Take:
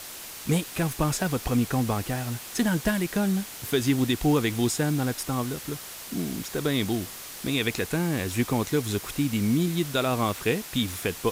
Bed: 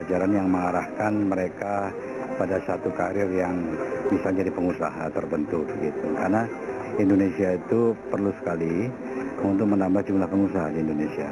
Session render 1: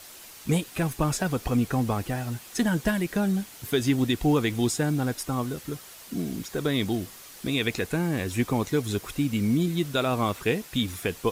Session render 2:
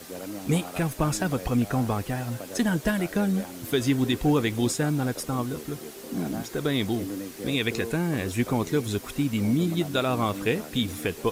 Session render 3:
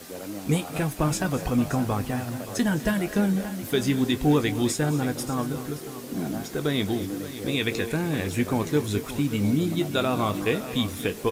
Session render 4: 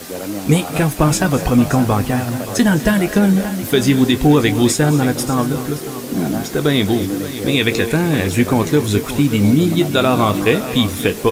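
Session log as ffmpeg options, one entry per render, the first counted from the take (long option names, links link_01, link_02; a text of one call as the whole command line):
ffmpeg -i in.wav -af "afftdn=noise_reduction=7:noise_floor=-40" out.wav
ffmpeg -i in.wav -i bed.wav -filter_complex "[1:a]volume=-14.5dB[link_01];[0:a][link_01]amix=inputs=2:normalize=0" out.wav
ffmpeg -i in.wav -filter_complex "[0:a]asplit=2[link_01][link_02];[link_02]adelay=20,volume=-12dB[link_03];[link_01][link_03]amix=inputs=2:normalize=0,aecho=1:1:207|238|575:0.133|0.141|0.211" out.wav
ffmpeg -i in.wav -af "volume=10.5dB,alimiter=limit=-3dB:level=0:latency=1" out.wav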